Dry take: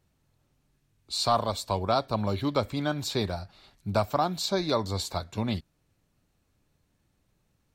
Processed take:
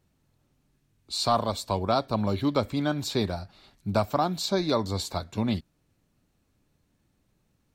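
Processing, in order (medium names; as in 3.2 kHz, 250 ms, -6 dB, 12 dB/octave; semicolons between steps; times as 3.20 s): peaking EQ 250 Hz +4 dB 1.2 oct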